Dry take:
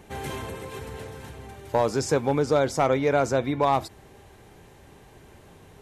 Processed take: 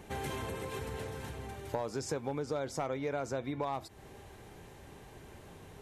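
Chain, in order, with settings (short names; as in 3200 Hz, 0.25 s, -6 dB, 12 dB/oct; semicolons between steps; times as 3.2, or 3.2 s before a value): compressor 4:1, threshold -33 dBFS, peak gain reduction 13.5 dB; gain -1.5 dB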